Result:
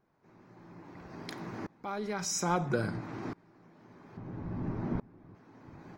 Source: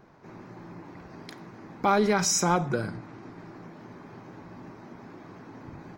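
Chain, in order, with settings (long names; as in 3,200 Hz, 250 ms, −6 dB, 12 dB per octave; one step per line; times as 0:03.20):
0:04.17–0:05.35: RIAA equalisation playback
tremolo with a ramp in dB swelling 0.6 Hz, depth 26 dB
level +7 dB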